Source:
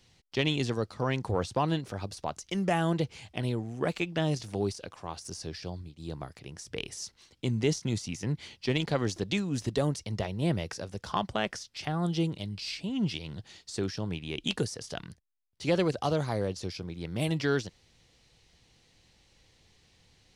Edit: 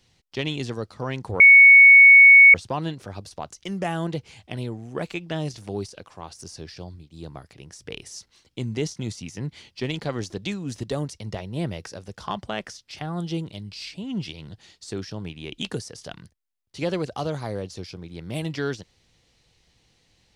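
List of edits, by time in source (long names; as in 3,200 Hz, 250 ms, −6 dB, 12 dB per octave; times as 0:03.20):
0:01.40: insert tone 2,220 Hz −6.5 dBFS 1.14 s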